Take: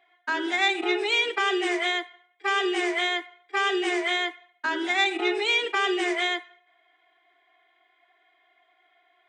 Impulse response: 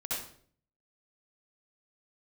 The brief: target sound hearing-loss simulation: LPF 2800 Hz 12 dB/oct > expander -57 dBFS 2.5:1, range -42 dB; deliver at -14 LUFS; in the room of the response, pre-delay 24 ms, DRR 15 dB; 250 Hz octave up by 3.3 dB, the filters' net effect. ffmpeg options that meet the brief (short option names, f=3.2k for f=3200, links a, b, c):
-filter_complex "[0:a]equalizer=f=250:t=o:g=6.5,asplit=2[a][b];[1:a]atrim=start_sample=2205,adelay=24[c];[b][c]afir=irnorm=-1:irlink=0,volume=-19dB[d];[a][d]amix=inputs=2:normalize=0,lowpass=2.8k,agate=range=-42dB:threshold=-57dB:ratio=2.5,volume=11dB"